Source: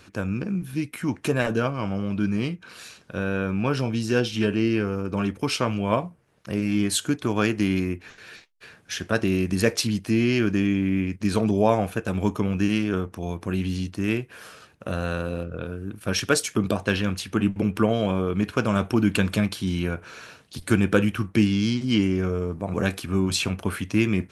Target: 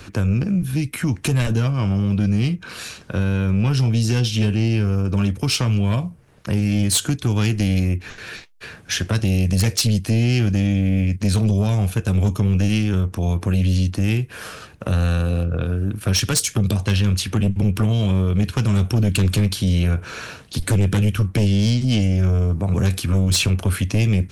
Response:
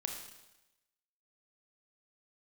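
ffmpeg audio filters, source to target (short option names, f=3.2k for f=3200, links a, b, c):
-filter_complex "[0:a]lowshelf=f=110:g=10,acrossover=split=170|3000[a][b][c];[b]acompressor=threshold=-34dB:ratio=6[d];[a][d][c]amix=inputs=3:normalize=0,aeval=exprs='0.316*(cos(1*acos(clip(val(0)/0.316,-1,1)))-cos(1*PI/2))+0.126*(cos(5*acos(clip(val(0)/0.316,-1,1)))-cos(5*PI/2))':c=same"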